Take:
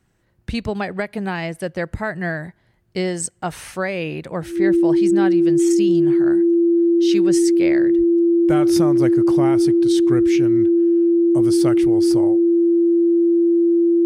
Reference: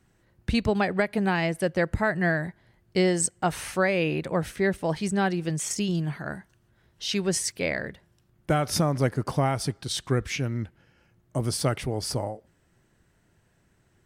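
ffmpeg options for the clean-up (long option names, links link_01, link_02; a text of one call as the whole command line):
ffmpeg -i in.wav -filter_complex "[0:a]bandreject=frequency=340:width=30,asplit=3[link_01][link_02][link_03];[link_01]afade=type=out:start_time=7.97:duration=0.02[link_04];[link_02]highpass=frequency=140:width=0.5412,highpass=frequency=140:width=1.3066,afade=type=in:start_time=7.97:duration=0.02,afade=type=out:start_time=8.09:duration=0.02[link_05];[link_03]afade=type=in:start_time=8.09:duration=0.02[link_06];[link_04][link_05][link_06]amix=inputs=3:normalize=0" out.wav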